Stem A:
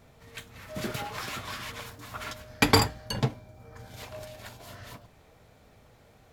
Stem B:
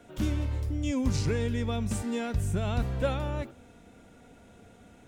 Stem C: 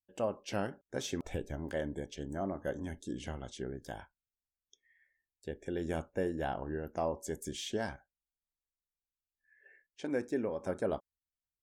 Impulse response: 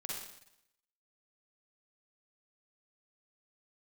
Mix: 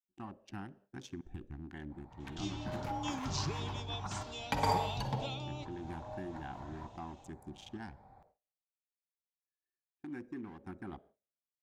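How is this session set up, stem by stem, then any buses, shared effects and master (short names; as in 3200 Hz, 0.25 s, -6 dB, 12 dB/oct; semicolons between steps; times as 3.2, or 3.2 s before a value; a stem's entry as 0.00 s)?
-4.5 dB, 1.90 s, bus A, send -11.5 dB, Wiener smoothing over 15 samples; band shelf 690 Hz +12.5 dB 1.2 oct
-7.0 dB, 2.20 s, no bus, no send, steep low-pass 6900 Hz 36 dB/oct; resonant high shelf 2100 Hz +11 dB, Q 1.5; fixed phaser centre 340 Hz, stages 8
-4.0 dB, 0.00 s, bus A, send -23 dB, Wiener smoothing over 41 samples
bus A: 0.0 dB, elliptic band-stop 370–740 Hz; compressor 3:1, threshold -39 dBFS, peak gain reduction 17 dB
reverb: on, RT60 0.80 s, pre-delay 41 ms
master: high shelf 3800 Hz -6.5 dB; gate with hold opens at -55 dBFS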